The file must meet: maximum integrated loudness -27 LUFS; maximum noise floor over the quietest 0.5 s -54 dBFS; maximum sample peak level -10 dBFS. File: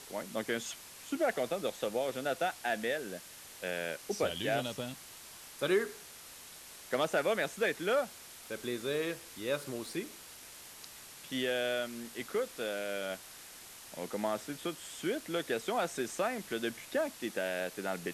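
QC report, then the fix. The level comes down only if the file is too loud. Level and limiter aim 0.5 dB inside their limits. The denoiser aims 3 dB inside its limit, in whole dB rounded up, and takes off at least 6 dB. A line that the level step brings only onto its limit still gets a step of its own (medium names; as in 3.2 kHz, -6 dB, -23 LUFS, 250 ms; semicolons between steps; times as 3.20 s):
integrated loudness -35.5 LUFS: pass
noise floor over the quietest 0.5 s -51 dBFS: fail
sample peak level -18.5 dBFS: pass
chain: noise reduction 6 dB, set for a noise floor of -51 dBFS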